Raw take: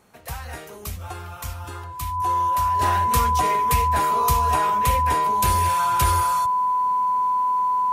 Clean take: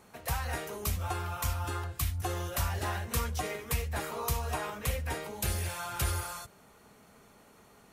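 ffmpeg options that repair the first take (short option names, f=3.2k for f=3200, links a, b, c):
-af "bandreject=f=1k:w=30,asetnsamples=n=441:p=0,asendcmd='2.79 volume volume -8.5dB',volume=0dB"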